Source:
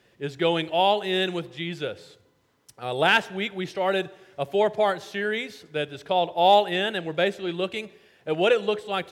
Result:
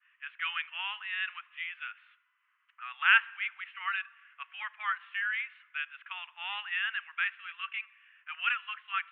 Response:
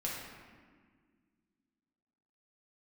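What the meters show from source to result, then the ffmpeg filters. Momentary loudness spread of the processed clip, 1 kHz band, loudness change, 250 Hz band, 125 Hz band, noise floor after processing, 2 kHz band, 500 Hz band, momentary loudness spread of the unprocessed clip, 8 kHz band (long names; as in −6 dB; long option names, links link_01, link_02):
15 LU, −13.0 dB, −8.0 dB, below −40 dB, below −40 dB, −75 dBFS, −0.5 dB, below −40 dB, 13 LU, can't be measured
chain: -af "asuperpass=centerf=1800:order=12:qfactor=0.99,adynamicequalizer=threshold=0.00794:dfrequency=1500:dqfactor=0.7:tfrequency=1500:tqfactor=0.7:attack=5:release=100:ratio=0.375:range=1.5:mode=cutabove:tftype=highshelf"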